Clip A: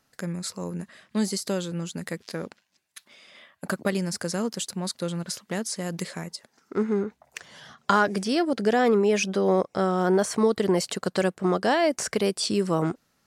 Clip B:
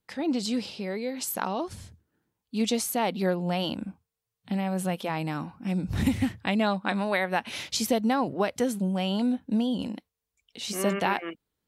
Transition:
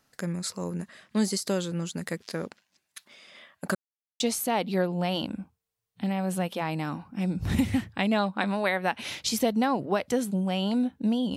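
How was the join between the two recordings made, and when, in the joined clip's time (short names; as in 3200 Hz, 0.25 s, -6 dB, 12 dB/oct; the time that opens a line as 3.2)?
clip A
3.75–4.2 mute
4.2 switch to clip B from 2.68 s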